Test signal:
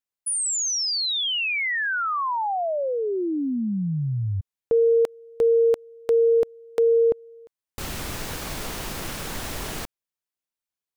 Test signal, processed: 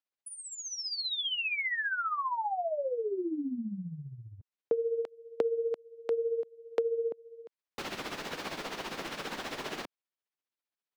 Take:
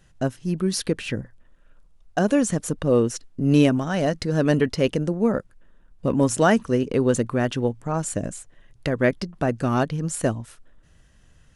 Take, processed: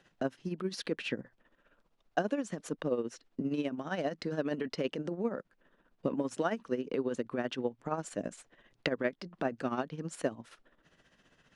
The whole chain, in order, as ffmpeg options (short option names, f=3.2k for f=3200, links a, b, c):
-filter_complex "[0:a]tremolo=f=15:d=0.65,acompressor=threshold=-32dB:ratio=6:attack=45:release=502:knee=6:detection=peak,acrossover=split=190 5200:gain=0.0891 1 0.158[a][b][c];[a][b][c]amix=inputs=3:normalize=0,volume=1.5dB"